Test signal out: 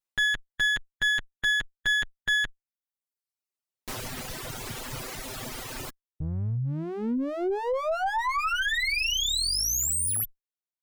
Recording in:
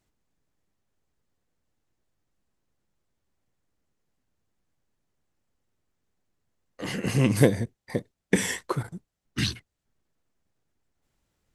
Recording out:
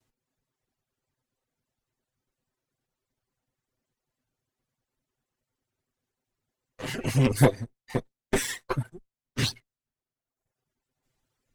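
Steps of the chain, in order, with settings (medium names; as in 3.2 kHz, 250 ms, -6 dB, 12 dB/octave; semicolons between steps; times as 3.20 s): comb filter that takes the minimum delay 7.8 ms; reverb removal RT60 1 s; Chebyshev shaper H 2 -13 dB, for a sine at -2.5 dBFS; trim +1 dB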